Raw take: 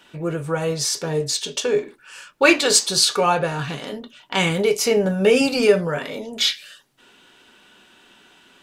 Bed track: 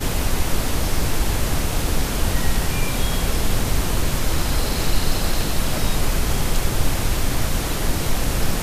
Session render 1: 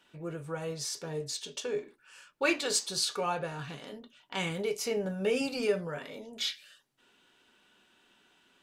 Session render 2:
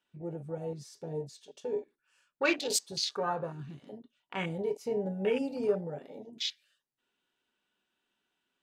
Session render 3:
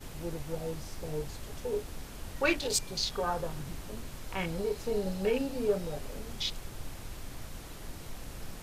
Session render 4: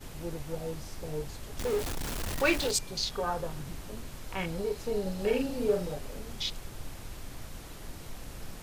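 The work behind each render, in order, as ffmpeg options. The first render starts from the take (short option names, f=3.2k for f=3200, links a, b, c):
-af "volume=-13.5dB"
-af "afwtdn=0.0178"
-filter_complex "[1:a]volume=-22dB[a];[0:a][a]amix=inputs=2:normalize=0"
-filter_complex "[0:a]asettb=1/sr,asplit=3[a][b][c];[a]atrim=end=1.584[d];[b]atrim=start=1.58:end=2.71,asetpts=PTS-STARTPTS,afade=t=in:d=0.004:c=qsin,afade=t=out:st=1.126:d=0.004:c=qsin,aeval=exprs='val(0)+0.5*0.0282*sgn(val(0))':c=same[e];[c]atrim=start=2.706[f];[d][e]acrossfade=d=0.004:c1=hsin:c2=qsin[g];[g][f]acrossfade=d=0.004:c1=qsin:c2=hsin,asettb=1/sr,asplit=3[h][i][j];[h]atrim=end=5.144[k];[i]atrim=start=5.14:end=5.94,asetpts=PTS-STARTPTS,afade=t=in:d=0.004:c=qsin,afade=t=out:st=0.796:d=0.004:c=qsin,asplit=2[l][m];[m]adelay=45,volume=-4.5dB[n];[l][n]amix=inputs=2:normalize=0,atrim=end_sample=35280[o];[j]atrim=start=5.936[p];[k][o]acrossfade=d=0.004:c1=hsin:c2=qsin[q];[q][p]acrossfade=d=0.004:c1=qsin:c2=hsin"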